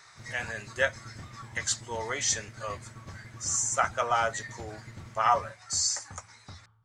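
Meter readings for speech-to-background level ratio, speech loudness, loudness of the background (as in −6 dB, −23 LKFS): 18.0 dB, −29.5 LKFS, −47.5 LKFS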